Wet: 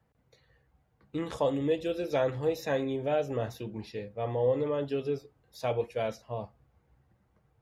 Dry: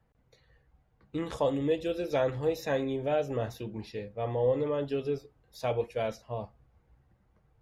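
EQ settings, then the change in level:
high-pass filter 66 Hz
0.0 dB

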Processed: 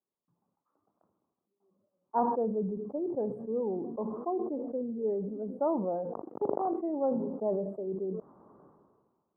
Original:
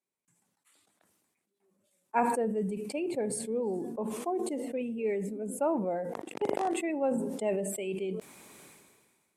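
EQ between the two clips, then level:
elliptic low-pass filter 1,200 Hz, stop band 50 dB
0.0 dB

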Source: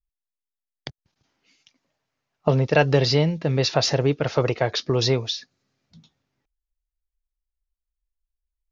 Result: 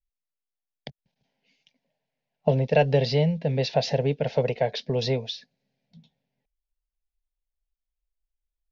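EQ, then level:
low-pass filter 3,200 Hz 12 dB per octave
phaser with its sweep stopped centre 330 Hz, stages 6
0.0 dB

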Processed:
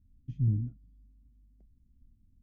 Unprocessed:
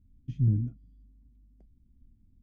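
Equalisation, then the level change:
low-shelf EQ 320 Hz +6.5 dB
−8.5 dB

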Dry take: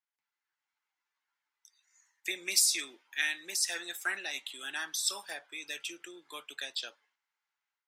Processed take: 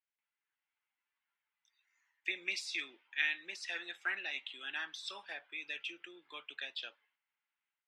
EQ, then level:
low-pass with resonance 2,800 Hz, resonance Q 2
−6.0 dB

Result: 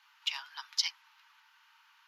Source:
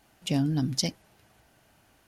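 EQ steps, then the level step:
moving average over 5 samples
Chebyshev high-pass with heavy ripple 890 Hz, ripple 3 dB
+5.5 dB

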